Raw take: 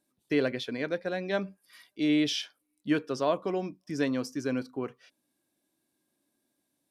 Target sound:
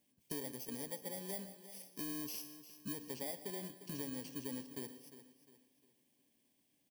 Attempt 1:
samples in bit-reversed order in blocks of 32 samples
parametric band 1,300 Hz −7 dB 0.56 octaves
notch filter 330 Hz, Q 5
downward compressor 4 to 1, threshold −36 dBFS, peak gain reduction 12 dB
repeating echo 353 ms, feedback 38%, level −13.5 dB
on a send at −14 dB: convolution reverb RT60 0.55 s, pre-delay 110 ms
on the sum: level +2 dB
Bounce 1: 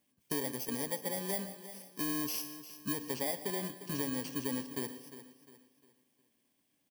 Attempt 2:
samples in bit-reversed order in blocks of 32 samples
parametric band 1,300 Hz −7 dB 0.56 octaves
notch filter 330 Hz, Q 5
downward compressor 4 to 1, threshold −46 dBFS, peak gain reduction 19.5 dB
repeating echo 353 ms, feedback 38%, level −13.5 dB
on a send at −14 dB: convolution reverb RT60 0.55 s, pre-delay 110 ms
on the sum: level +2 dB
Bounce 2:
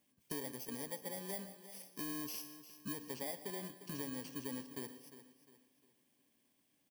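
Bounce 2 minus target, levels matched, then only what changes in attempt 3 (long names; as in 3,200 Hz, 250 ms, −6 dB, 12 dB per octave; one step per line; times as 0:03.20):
1,000 Hz band +3.0 dB
change: parametric band 1,300 Hz −17.5 dB 0.56 octaves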